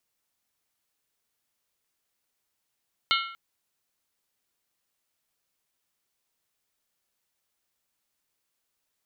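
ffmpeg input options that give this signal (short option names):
-f lavfi -i "aevalsrc='0.0708*pow(10,-3*t/0.67)*sin(2*PI*1360*t)+0.0631*pow(10,-3*t/0.531)*sin(2*PI*2167.8*t)+0.0562*pow(10,-3*t/0.458)*sin(2*PI*2905*t)+0.0501*pow(10,-3*t/0.442)*sin(2*PI*3122.6*t)+0.0447*pow(10,-3*t/0.411)*sin(2*PI*3608.1*t)+0.0398*pow(10,-3*t/0.392)*sin(2*PI*3968.5*t)+0.0355*pow(10,-3*t/0.377)*sin(2*PI*4292.2*t)':d=0.24:s=44100"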